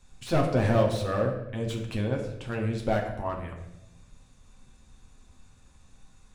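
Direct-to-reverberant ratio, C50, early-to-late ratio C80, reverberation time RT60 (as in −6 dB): 0.5 dB, 6.5 dB, 9.0 dB, 0.95 s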